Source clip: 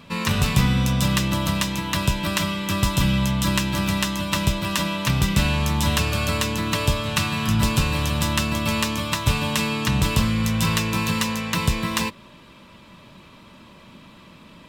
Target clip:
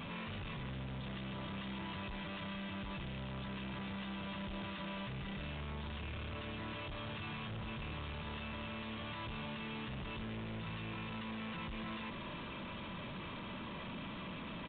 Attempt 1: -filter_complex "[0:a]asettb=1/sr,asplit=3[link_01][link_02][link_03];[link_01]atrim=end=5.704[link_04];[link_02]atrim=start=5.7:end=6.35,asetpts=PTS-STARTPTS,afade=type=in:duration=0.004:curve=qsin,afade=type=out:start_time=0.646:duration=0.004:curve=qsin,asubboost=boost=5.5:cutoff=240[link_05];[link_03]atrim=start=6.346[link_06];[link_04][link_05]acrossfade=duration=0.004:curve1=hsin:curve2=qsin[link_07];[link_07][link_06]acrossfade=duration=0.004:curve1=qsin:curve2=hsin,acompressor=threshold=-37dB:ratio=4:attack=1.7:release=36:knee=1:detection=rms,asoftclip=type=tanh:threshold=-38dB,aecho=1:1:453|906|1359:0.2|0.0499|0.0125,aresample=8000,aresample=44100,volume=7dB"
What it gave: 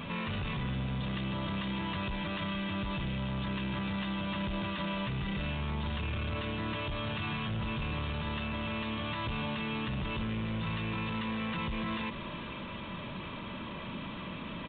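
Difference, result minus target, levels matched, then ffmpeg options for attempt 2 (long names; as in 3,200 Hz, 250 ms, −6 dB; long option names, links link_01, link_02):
soft clipping: distortion −6 dB
-filter_complex "[0:a]asettb=1/sr,asplit=3[link_01][link_02][link_03];[link_01]atrim=end=5.704[link_04];[link_02]atrim=start=5.7:end=6.35,asetpts=PTS-STARTPTS,afade=type=in:duration=0.004:curve=qsin,afade=type=out:start_time=0.646:duration=0.004:curve=qsin,asubboost=boost=5.5:cutoff=240[link_05];[link_03]atrim=start=6.346[link_06];[link_04][link_05]acrossfade=duration=0.004:curve1=hsin:curve2=qsin[link_07];[link_07][link_06]acrossfade=duration=0.004:curve1=qsin:curve2=hsin,acompressor=threshold=-37dB:ratio=4:attack=1.7:release=36:knee=1:detection=rms,asoftclip=type=tanh:threshold=-49dB,aecho=1:1:453|906|1359:0.2|0.0499|0.0125,aresample=8000,aresample=44100,volume=7dB"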